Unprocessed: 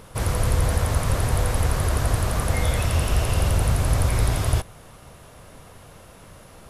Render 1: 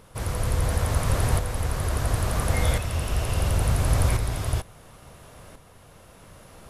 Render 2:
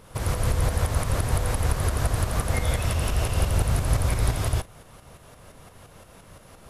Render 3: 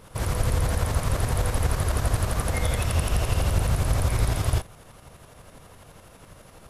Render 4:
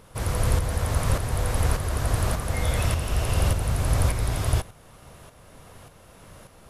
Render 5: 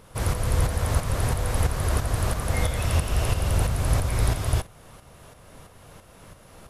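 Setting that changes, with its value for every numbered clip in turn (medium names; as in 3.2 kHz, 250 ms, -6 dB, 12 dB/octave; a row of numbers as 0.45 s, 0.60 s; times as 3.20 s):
tremolo, rate: 0.72 Hz, 5.8 Hz, 12 Hz, 1.7 Hz, 3 Hz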